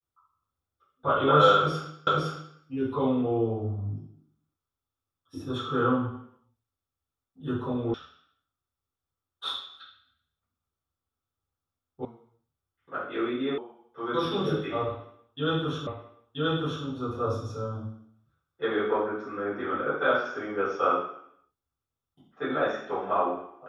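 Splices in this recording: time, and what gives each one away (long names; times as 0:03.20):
0:02.07: the same again, the last 0.51 s
0:07.94: cut off before it has died away
0:12.05: cut off before it has died away
0:13.58: cut off before it has died away
0:15.87: the same again, the last 0.98 s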